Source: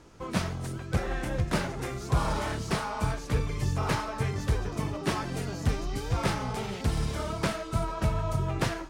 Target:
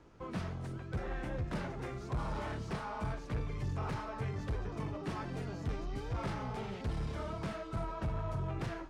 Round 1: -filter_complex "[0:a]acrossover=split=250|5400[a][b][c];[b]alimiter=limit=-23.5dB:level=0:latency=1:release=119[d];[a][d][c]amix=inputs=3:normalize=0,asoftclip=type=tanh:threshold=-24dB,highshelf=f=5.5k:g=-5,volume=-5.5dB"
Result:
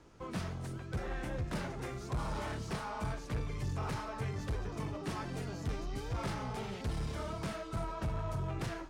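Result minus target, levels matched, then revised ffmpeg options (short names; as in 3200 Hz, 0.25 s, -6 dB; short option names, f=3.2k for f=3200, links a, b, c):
8000 Hz band +7.0 dB
-filter_complex "[0:a]acrossover=split=250|5400[a][b][c];[b]alimiter=limit=-23.5dB:level=0:latency=1:release=119[d];[a][d][c]amix=inputs=3:normalize=0,asoftclip=type=tanh:threshold=-24dB,highshelf=f=5.5k:g=-16.5,volume=-5.5dB"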